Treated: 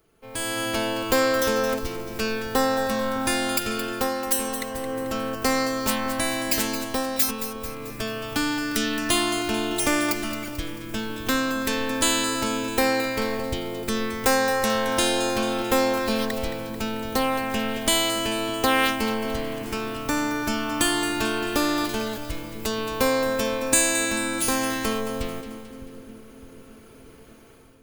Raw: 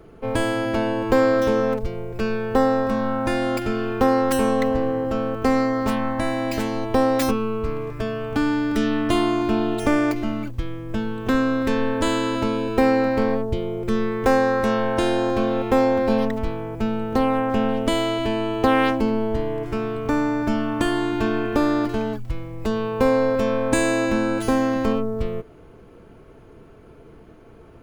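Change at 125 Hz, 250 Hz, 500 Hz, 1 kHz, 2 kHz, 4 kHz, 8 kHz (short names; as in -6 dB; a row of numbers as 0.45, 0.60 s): -7.5, -6.0, -5.0, -2.5, +2.0, +7.0, +12.5 dB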